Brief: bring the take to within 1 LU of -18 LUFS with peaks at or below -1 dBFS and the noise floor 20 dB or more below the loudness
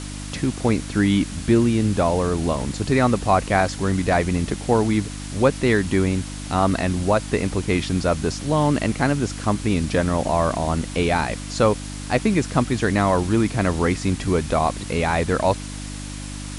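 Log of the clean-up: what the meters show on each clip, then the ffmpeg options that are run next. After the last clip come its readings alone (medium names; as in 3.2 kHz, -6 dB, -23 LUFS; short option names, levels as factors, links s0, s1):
hum 50 Hz; highest harmonic 300 Hz; hum level -30 dBFS; noise floor -32 dBFS; noise floor target -42 dBFS; loudness -21.5 LUFS; peak level -3.0 dBFS; loudness target -18.0 LUFS
-> -af "bandreject=f=50:t=h:w=4,bandreject=f=100:t=h:w=4,bandreject=f=150:t=h:w=4,bandreject=f=200:t=h:w=4,bandreject=f=250:t=h:w=4,bandreject=f=300:t=h:w=4"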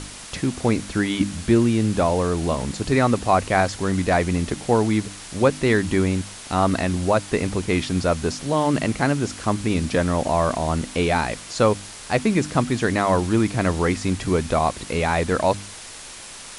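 hum not found; noise floor -39 dBFS; noise floor target -42 dBFS
-> -af "afftdn=nr=6:nf=-39"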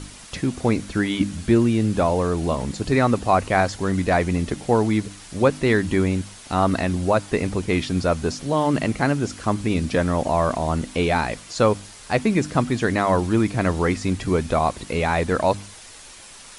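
noise floor -43 dBFS; loudness -22.0 LUFS; peak level -4.0 dBFS; loudness target -18.0 LUFS
-> -af "volume=1.58,alimiter=limit=0.891:level=0:latency=1"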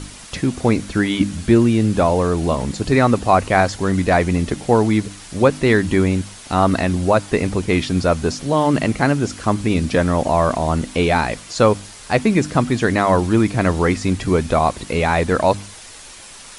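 loudness -18.0 LUFS; peak level -1.0 dBFS; noise floor -39 dBFS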